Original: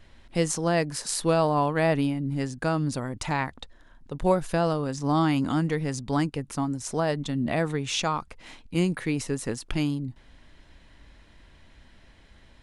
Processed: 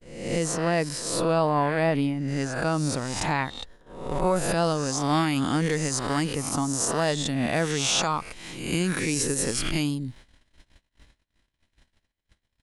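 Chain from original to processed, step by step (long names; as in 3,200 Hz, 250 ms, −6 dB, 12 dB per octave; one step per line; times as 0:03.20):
peak hold with a rise ahead of every peak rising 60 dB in 0.76 s
noise gate −46 dBFS, range −38 dB
high-shelf EQ 4,200 Hz −4.5 dB, from 0:02.28 +2.5 dB, from 0:04.36 +10.5 dB
brickwall limiter −13.5 dBFS, peak gain reduction 6 dB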